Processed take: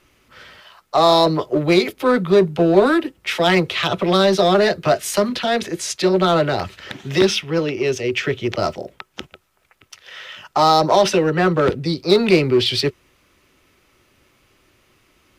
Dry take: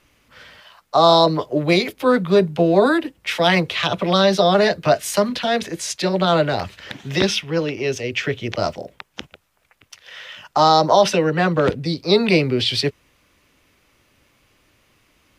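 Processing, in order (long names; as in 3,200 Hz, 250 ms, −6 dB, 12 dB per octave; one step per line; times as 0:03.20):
hollow resonant body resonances 370/1,300 Hz, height 9 dB, ringing for 90 ms
in parallel at −12 dB: wave folding −15.5 dBFS
on the sum: level −1 dB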